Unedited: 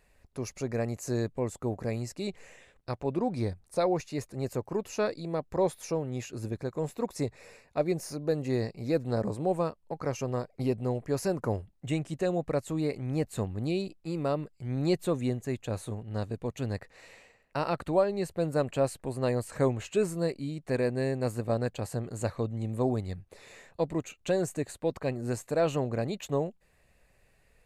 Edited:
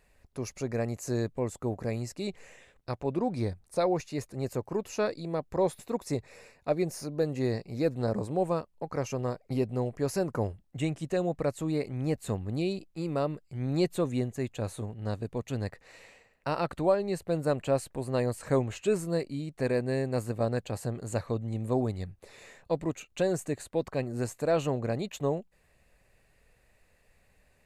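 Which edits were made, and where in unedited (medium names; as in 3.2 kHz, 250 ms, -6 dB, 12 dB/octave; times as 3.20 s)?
5.79–6.88 s: delete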